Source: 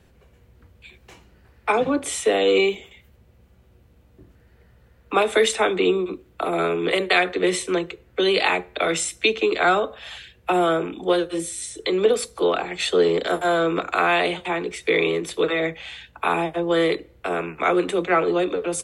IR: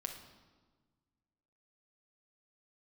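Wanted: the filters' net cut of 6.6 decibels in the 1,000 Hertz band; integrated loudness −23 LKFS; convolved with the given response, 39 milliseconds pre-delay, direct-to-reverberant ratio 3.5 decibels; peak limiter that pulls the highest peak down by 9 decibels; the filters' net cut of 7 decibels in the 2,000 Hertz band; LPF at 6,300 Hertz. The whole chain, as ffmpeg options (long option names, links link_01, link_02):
-filter_complex "[0:a]lowpass=6300,equalizer=frequency=1000:width_type=o:gain=-8.5,equalizer=frequency=2000:width_type=o:gain=-6.5,alimiter=limit=-16.5dB:level=0:latency=1,asplit=2[link_01][link_02];[1:a]atrim=start_sample=2205,adelay=39[link_03];[link_02][link_03]afir=irnorm=-1:irlink=0,volume=-2.5dB[link_04];[link_01][link_04]amix=inputs=2:normalize=0,volume=2.5dB"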